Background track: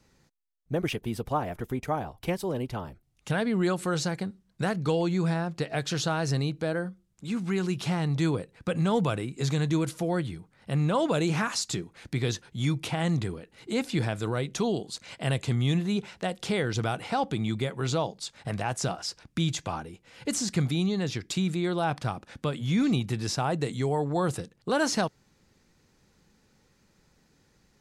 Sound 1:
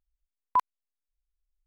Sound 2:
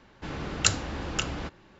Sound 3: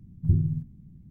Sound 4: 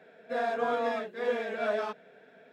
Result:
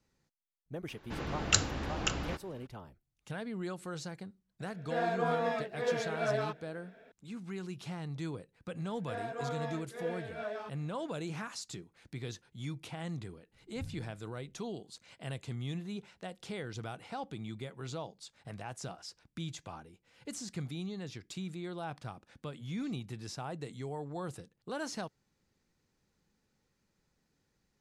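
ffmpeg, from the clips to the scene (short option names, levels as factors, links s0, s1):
-filter_complex "[4:a]asplit=2[s0][s1];[0:a]volume=0.224[s2];[3:a]equalizer=f=350:w=0.63:g=-13.5[s3];[2:a]atrim=end=1.79,asetpts=PTS-STARTPTS,volume=0.708,afade=t=in:d=0.004:c=hsin,afade=t=out:st=1.786:d=0.004:c=hsin,adelay=880[s4];[s0]atrim=end=2.52,asetpts=PTS-STARTPTS,volume=0.75,afade=t=in:d=0.004:c=hsin,afade=t=out:st=2.516:d=0.004:c=hsin,adelay=4600[s5];[s1]atrim=end=2.52,asetpts=PTS-STARTPTS,volume=0.335,afade=t=in:d=0.004:c=hsin,afade=t=out:st=2.516:d=0.004:c=hsin,adelay=8770[s6];[s3]atrim=end=1.1,asetpts=PTS-STARTPTS,volume=0.126,afade=t=in:d=0.004:c=hsin,afade=t=out:st=1.096:d=0.004:c=hsin,adelay=13520[s7];[s2][s4][s5][s6][s7]amix=inputs=5:normalize=0"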